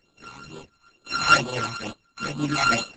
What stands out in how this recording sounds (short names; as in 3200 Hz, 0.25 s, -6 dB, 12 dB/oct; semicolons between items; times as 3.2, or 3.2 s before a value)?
a buzz of ramps at a fixed pitch in blocks of 32 samples; phasing stages 12, 2.2 Hz, lowest notch 510–2000 Hz; Opus